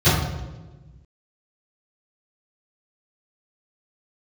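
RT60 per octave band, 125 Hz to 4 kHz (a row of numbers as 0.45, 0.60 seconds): 1.8, 1.7, 1.4, 1.1, 0.90, 0.80 seconds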